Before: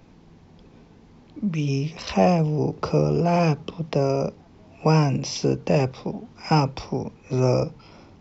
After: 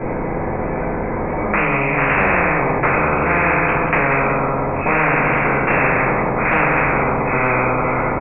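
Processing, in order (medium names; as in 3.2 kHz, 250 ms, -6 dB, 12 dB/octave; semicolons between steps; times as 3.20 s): steep low-pass 2.3 kHz 96 dB/octave; peaking EQ 510 Hz +13 dB 0.24 oct; compression 2:1, threshold -18 dBFS, peak gain reduction 5 dB; on a send: feedback delay 185 ms, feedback 33%, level -10 dB; on the sum: simulated room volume 120 m³, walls mixed, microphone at 3 m; spectrum-flattening compressor 10:1; trim -6 dB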